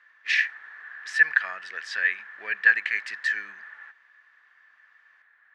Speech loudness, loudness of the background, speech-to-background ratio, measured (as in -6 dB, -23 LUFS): -24.5 LUFS, -43.0 LUFS, 18.5 dB